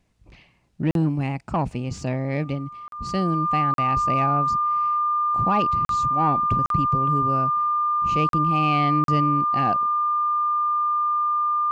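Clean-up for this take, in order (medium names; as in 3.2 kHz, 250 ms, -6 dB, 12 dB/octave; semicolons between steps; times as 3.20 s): band-stop 1.2 kHz, Q 30; interpolate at 0.91/2.88/3.74/5.85/6.66/8.29/9.04 s, 42 ms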